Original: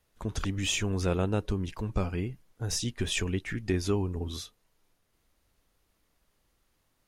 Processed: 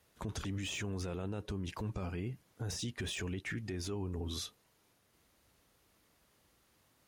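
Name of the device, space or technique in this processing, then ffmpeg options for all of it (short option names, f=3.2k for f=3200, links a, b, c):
podcast mastering chain: -af "highpass=76,deesser=0.8,acompressor=threshold=-40dB:ratio=2,alimiter=level_in=11dB:limit=-24dB:level=0:latency=1:release=14,volume=-11dB,volume=4.5dB" -ar 44100 -c:a libmp3lame -b:a 112k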